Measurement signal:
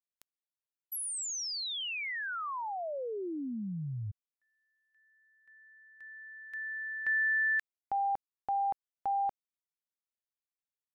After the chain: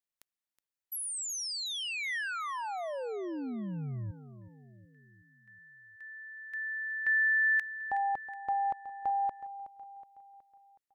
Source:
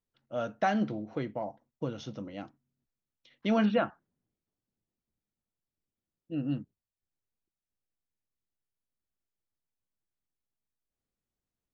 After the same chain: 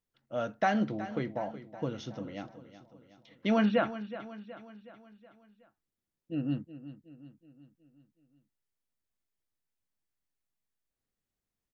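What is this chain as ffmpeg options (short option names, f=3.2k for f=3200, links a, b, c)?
-filter_complex "[0:a]equalizer=f=1.9k:t=o:w=0.4:g=3,asplit=2[a][b];[b]aecho=0:1:370|740|1110|1480|1850:0.2|0.104|0.054|0.0281|0.0146[c];[a][c]amix=inputs=2:normalize=0"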